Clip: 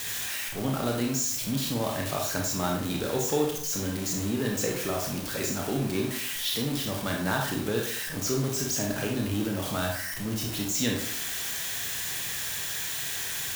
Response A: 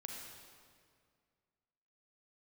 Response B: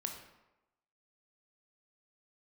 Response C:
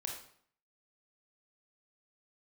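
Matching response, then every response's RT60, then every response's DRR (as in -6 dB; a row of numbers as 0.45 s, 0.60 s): C; 2.1 s, 1.0 s, 0.60 s; 0.0 dB, 3.0 dB, 0.0 dB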